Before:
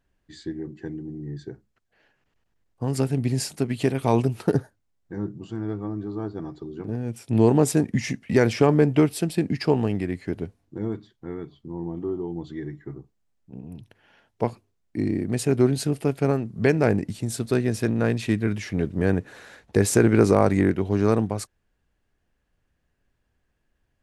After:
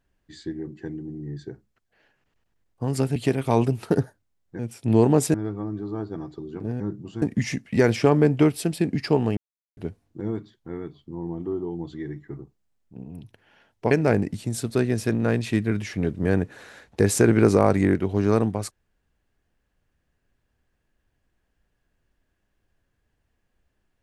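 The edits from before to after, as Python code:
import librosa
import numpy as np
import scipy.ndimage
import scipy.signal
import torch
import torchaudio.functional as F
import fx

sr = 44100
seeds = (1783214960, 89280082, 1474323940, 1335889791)

y = fx.edit(x, sr, fx.cut(start_s=3.16, length_s=0.57),
    fx.swap(start_s=5.16, length_s=0.42, other_s=7.04, other_length_s=0.75),
    fx.silence(start_s=9.94, length_s=0.4),
    fx.cut(start_s=14.48, length_s=2.19), tone=tone)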